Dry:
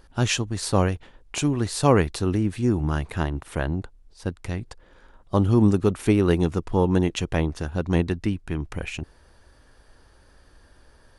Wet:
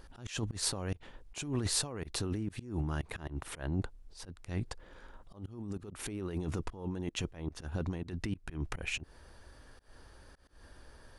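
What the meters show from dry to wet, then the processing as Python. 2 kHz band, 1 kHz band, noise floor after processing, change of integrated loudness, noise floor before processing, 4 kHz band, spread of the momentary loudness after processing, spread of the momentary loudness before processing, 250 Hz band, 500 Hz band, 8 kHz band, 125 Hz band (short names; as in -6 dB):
-11.0 dB, -18.0 dB, -58 dBFS, -14.0 dB, -56 dBFS, -6.5 dB, 21 LU, 14 LU, -16.0 dB, -18.5 dB, -5.0 dB, -14.0 dB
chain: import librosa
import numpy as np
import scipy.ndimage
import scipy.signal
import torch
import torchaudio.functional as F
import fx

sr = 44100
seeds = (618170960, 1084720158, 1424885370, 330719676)

y = fx.over_compress(x, sr, threshold_db=-28.0, ratio=-1.0)
y = fx.auto_swell(y, sr, attack_ms=170.0)
y = y * 10.0 ** (-6.0 / 20.0)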